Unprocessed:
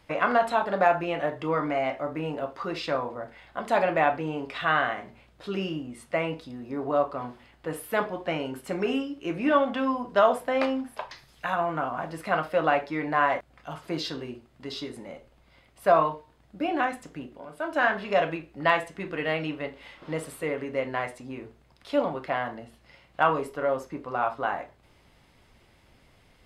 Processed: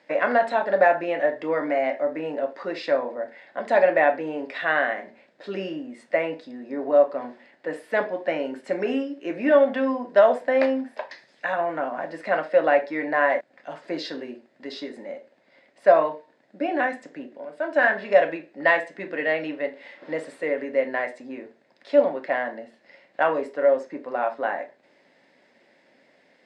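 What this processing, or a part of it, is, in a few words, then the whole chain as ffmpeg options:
television speaker: -af "highpass=frequency=210:width=0.5412,highpass=frequency=210:width=1.3066,equalizer=frequency=260:width_type=q:width=4:gain=3,equalizer=frequency=570:width_type=q:width=4:gain=9,equalizer=frequency=1200:width_type=q:width=4:gain=-8,equalizer=frequency=1800:width_type=q:width=4:gain=9,equalizer=frequency=3100:width_type=q:width=4:gain=-5,equalizer=frequency=6200:width_type=q:width=4:gain=-4,lowpass=frequency=7100:width=0.5412,lowpass=frequency=7100:width=1.3066"

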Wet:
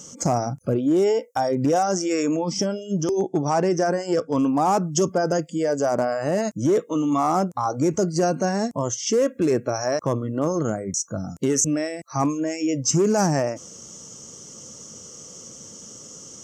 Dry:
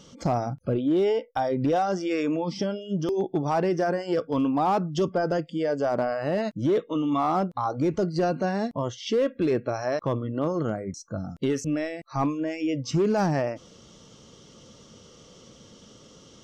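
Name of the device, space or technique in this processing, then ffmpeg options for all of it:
budget condenser microphone: -filter_complex "[0:a]asettb=1/sr,asplit=3[link_01][link_02][link_03];[link_01]atrim=end=3.014[link_04];[link_02]atrim=start=3.01:end=4.43,asetpts=PTS-STARTPTS,afade=type=in:duration=0.004:curve=qsin,afade=type=out:start_time=1.416:duration=0.004:curve=qsin,lowpass=7200[link_05];[link_03]atrim=start=4.426[link_06];[link_04][link_05]acrossfade=duration=0.004:curve1=hsin:curve2=qsin[link_07];[link_07][link_06]acrossfade=duration=0.004:curve1=qsin:curve2=hsin,highpass=81,highshelf=frequency=5100:width_type=q:width=3:gain=10.5,volume=3.5dB"

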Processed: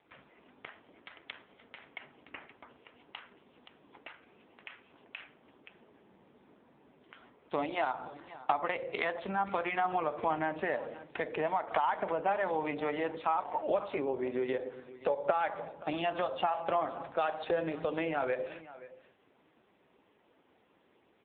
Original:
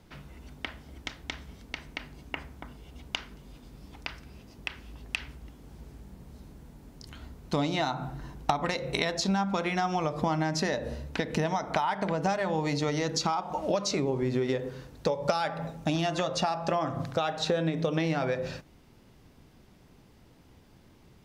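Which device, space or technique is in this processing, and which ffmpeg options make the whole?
satellite phone: -filter_complex "[0:a]asettb=1/sr,asplit=3[link_01][link_02][link_03];[link_01]atrim=end=7.134[link_04];[link_02]atrim=start=7.13:end=8.72,asetpts=PTS-STARTPTS,afade=type=in:duration=0.004:curve=qsin,afade=type=out:start_time=1.586:duration=0.004:curve=qsin,lowshelf=frequency=210:gain=-2[link_05];[link_03]atrim=start=8.716[link_06];[link_04][link_05]acrossfade=duration=0.004:curve1=hsin:curve2=qsin[link_07];[link_07][link_06]acrossfade=duration=0.004:curve1=qsin:curve2=hsin,highpass=390,lowpass=3400,aecho=1:1:525:0.141" -ar 8000 -c:a libopencore_amrnb -b:a 5900

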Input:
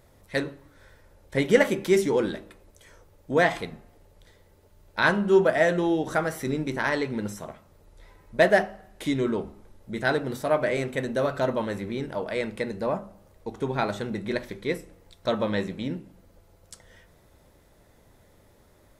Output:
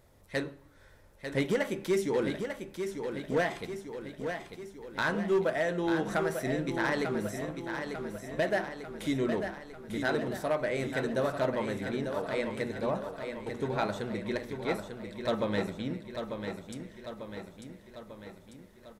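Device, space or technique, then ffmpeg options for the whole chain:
limiter into clipper: -af "alimiter=limit=-12.5dB:level=0:latency=1:release=369,asoftclip=type=hard:threshold=-17dB,aecho=1:1:895|1790|2685|3580|4475|5370|6265:0.447|0.255|0.145|0.0827|0.0472|0.0269|0.0153,volume=-4.5dB"

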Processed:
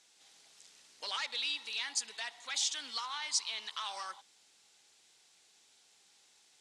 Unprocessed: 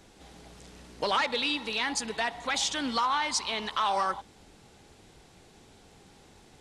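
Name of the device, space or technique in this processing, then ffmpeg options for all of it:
piezo pickup straight into a mixer: -af "lowpass=7200,aderivative,volume=1.5dB"

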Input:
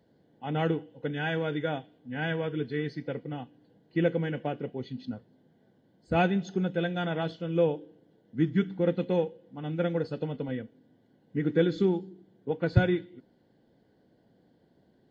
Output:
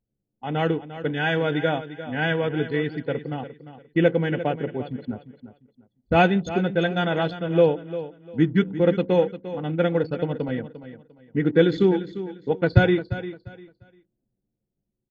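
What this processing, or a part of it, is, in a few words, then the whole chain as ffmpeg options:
voice memo with heavy noise removal: -af "equalizer=frequency=180:width_type=o:width=2.3:gain=-3,anlmdn=0.1,dynaudnorm=framelen=110:gausssize=17:maxgain=3dB,aecho=1:1:349|698|1047:0.224|0.056|0.014,volume=5.5dB"

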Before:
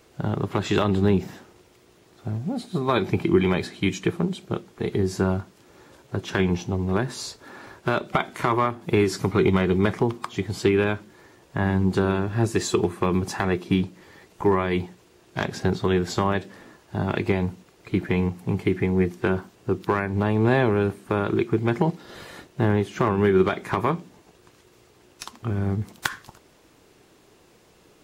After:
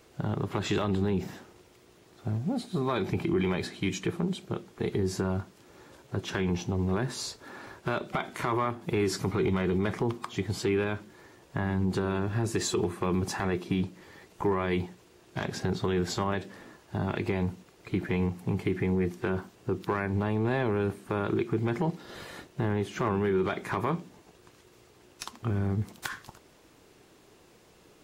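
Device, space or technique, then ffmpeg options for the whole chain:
soft clipper into limiter: -af "asoftclip=type=tanh:threshold=-8dB,alimiter=limit=-17.5dB:level=0:latency=1:release=46,volume=-2dB"

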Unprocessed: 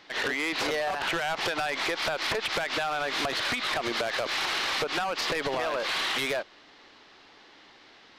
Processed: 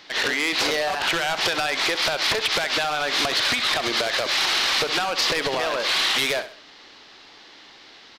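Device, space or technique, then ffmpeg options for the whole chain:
presence and air boost: -af "equalizer=frequency=4600:width_type=o:width=1.7:gain=5.5,highshelf=frequency=10000:gain=6.5,aecho=1:1:66|132|198:0.251|0.0854|0.029,volume=3.5dB"

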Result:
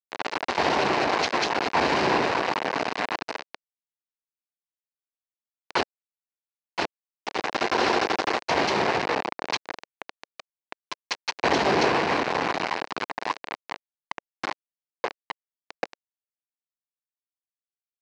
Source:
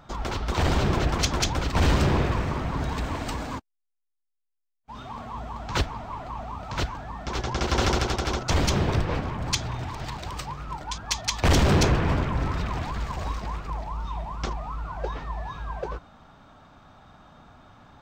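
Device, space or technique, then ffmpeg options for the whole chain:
hand-held game console: -af "acrusher=bits=3:mix=0:aa=0.000001,highpass=460,equalizer=frequency=560:width_type=q:width=4:gain=-4,equalizer=frequency=1300:width_type=q:width=4:gain=-6,equalizer=frequency=3400:width_type=q:width=4:gain=-7,lowpass=frequency=4200:width=0.5412,lowpass=frequency=4200:width=1.3066,equalizer=frequency=2800:width_type=o:width=2.1:gain=-5.5,volume=8dB"

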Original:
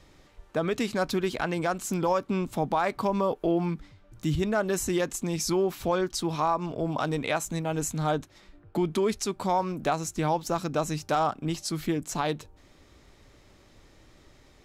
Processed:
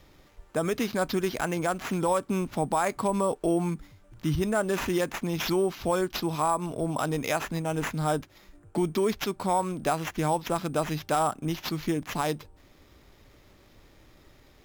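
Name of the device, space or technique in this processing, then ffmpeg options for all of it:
crushed at another speed: -af "asetrate=22050,aresample=44100,acrusher=samples=10:mix=1:aa=0.000001,asetrate=88200,aresample=44100"

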